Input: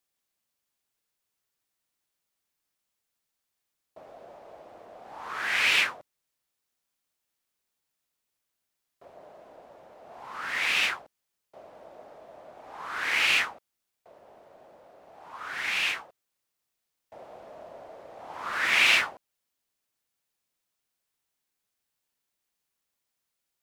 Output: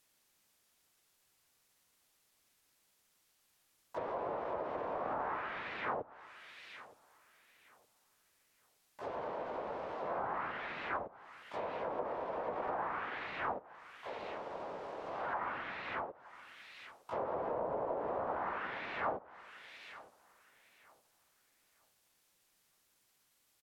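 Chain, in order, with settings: reverse; compressor 10:1, threshold -37 dBFS, peak gain reduction 20 dB; reverse; harmoniser -4 st -2 dB, +7 st -2 dB; darkening echo 0.917 s, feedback 27%, low-pass 2500 Hz, level -21 dB; treble ducked by the level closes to 950 Hz, closed at -38.5 dBFS; gain +6.5 dB

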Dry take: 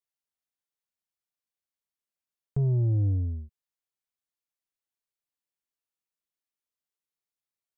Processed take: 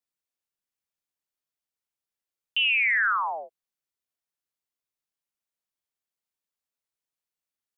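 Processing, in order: ring modulator with a swept carrier 1800 Hz, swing 70%, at 0.42 Hz; gain +3.5 dB

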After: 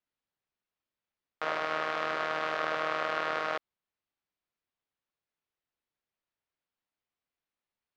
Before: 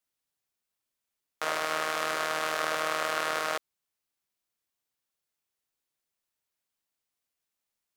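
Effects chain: air absorption 230 m

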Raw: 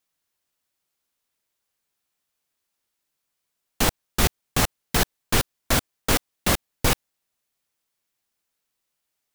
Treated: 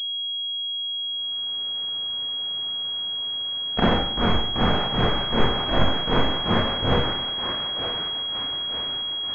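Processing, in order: short-time reversal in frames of 45 ms; recorder AGC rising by 19 dB/s; on a send: thinning echo 0.924 s, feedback 60%, high-pass 870 Hz, level -6.5 dB; on the sum: Schroeder reverb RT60 0.71 s, combs from 31 ms, DRR -8 dB; pulse-width modulation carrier 3300 Hz; gain -2.5 dB

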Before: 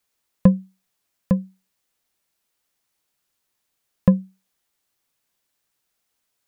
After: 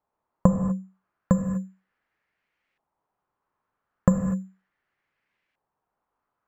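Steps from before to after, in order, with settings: compressor, threshold -14 dBFS, peak gain reduction 6.5 dB; careless resampling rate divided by 6×, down filtered, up zero stuff; non-linear reverb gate 0.27 s flat, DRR 6 dB; LFO low-pass saw up 0.36 Hz 880–2300 Hz

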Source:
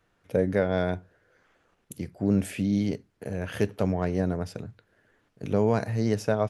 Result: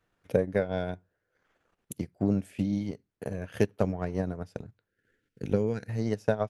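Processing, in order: spectral gain 4.89–5.89, 540–1300 Hz -16 dB; transient shaper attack +8 dB, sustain -9 dB; gain -6 dB

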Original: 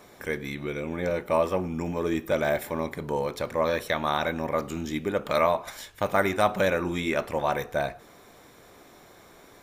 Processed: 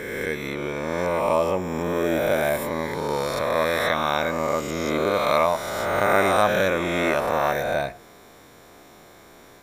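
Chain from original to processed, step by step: spectral swells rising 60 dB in 2.10 s

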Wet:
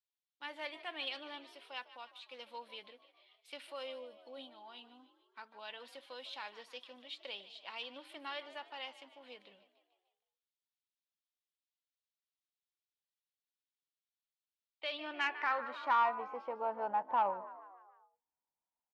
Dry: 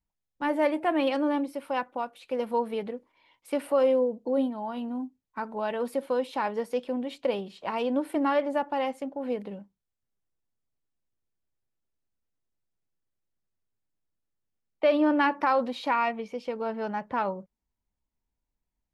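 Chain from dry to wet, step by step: frequency-shifting echo 0.15 s, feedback 54%, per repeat +57 Hz, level -16 dB; band-pass sweep 3600 Hz -> 890 Hz, 14.92–16.21; soft clip -22 dBFS, distortion -21 dB; gain +1 dB

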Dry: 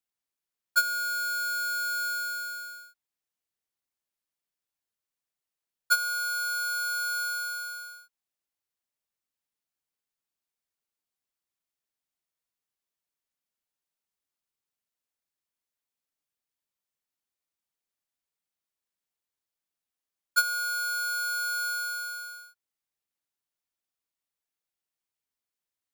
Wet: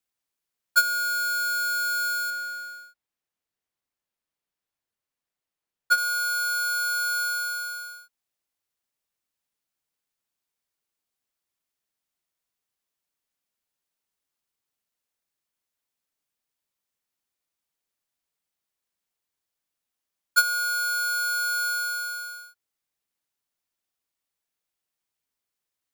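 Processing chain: 2.3–5.98 high shelf 3900 Hz -7 dB; gain +4 dB

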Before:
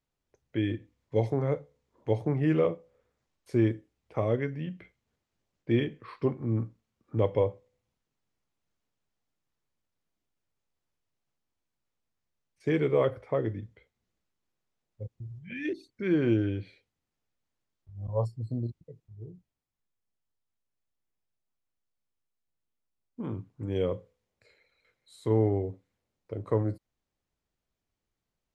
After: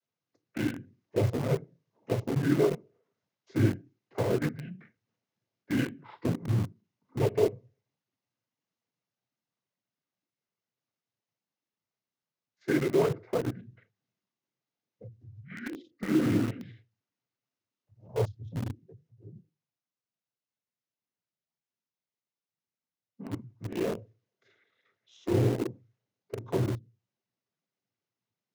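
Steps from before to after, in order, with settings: notches 50/100/150/200/250/300/350/400 Hz; noise vocoder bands 16; formant shift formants -3 st; in parallel at -7 dB: bit-crush 5-bit; on the sum: gain -2.5 dB

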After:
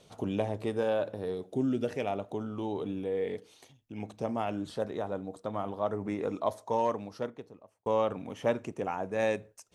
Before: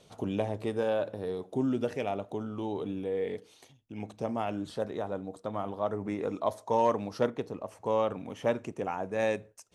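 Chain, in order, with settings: 1.34–1.89 bell 980 Hz -8.5 dB 0.69 oct; 6.39–7.86 fade out

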